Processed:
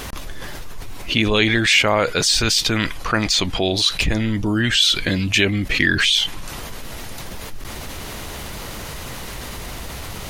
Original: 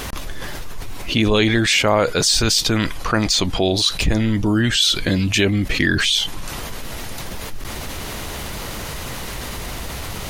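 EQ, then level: dynamic EQ 2300 Hz, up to +6 dB, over -31 dBFS, Q 0.89; -2.5 dB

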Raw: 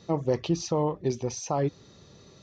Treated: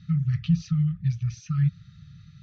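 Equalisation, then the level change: brick-wall FIR band-stop 180–1200 Hz; LPF 3300 Hz 12 dB/oct; resonant low shelf 310 Hz +9 dB, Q 3; -1.0 dB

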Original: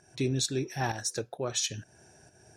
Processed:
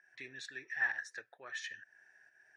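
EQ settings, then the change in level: band-pass 1800 Hz, Q 12; +10.5 dB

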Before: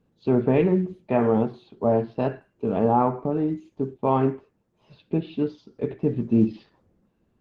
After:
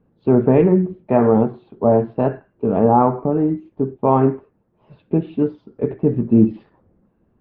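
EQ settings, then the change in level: LPF 1600 Hz 12 dB/oct; +6.5 dB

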